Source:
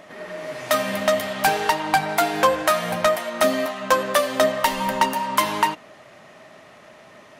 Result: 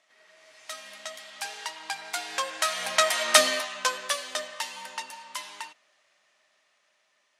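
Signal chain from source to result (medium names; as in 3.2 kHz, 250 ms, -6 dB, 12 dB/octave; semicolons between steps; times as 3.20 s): Doppler pass-by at 3.28 s, 7 m/s, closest 1.4 m; frequency weighting ITU-R 468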